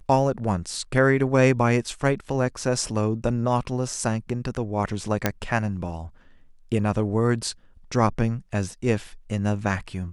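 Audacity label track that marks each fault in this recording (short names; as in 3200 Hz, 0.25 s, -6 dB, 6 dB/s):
5.260000	5.260000	pop -5 dBFS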